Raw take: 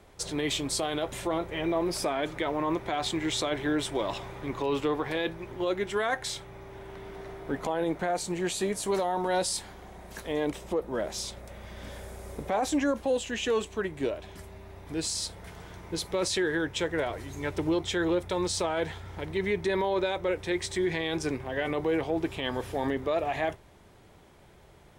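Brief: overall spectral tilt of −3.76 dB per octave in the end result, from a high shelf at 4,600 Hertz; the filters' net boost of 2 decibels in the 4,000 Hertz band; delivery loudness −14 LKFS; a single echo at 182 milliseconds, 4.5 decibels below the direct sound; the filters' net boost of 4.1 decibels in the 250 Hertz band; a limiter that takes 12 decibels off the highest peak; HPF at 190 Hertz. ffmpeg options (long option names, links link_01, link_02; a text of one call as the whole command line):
ffmpeg -i in.wav -af "highpass=190,equalizer=frequency=250:width_type=o:gain=7,equalizer=frequency=4000:width_type=o:gain=6,highshelf=frequency=4600:gain=-7.5,alimiter=level_in=2.5dB:limit=-24dB:level=0:latency=1,volume=-2.5dB,aecho=1:1:182:0.596,volume=20.5dB" out.wav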